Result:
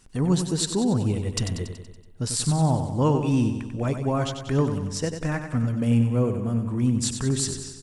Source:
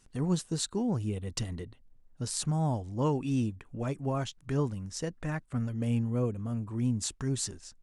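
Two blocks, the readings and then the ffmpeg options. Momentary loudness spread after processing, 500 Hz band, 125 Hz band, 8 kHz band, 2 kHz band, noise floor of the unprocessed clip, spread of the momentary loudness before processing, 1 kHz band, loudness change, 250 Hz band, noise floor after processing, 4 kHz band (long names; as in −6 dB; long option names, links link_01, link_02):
7 LU, +7.5 dB, +8.0 dB, +7.5 dB, +8.0 dB, −61 dBFS, 7 LU, +7.5 dB, +8.0 dB, +8.0 dB, −45 dBFS, +8.0 dB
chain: -af "bandreject=frequency=6400:width=20,acontrast=80,aecho=1:1:94|188|282|376|470|564|658:0.398|0.227|0.129|0.0737|0.042|0.024|0.0137"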